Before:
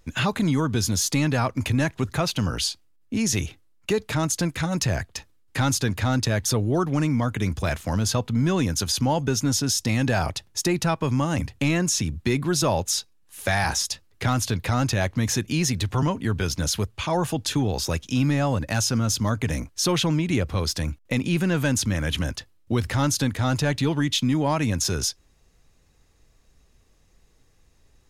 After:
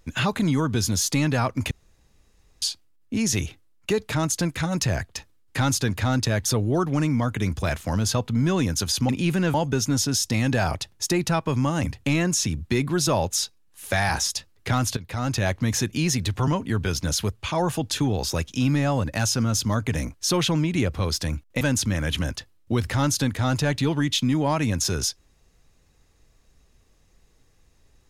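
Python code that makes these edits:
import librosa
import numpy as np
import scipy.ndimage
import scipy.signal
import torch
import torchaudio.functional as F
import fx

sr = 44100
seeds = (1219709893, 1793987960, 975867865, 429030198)

y = fx.edit(x, sr, fx.room_tone_fill(start_s=1.71, length_s=0.91),
    fx.fade_in_from(start_s=14.52, length_s=0.46, floor_db=-15.0),
    fx.move(start_s=21.16, length_s=0.45, to_s=9.09), tone=tone)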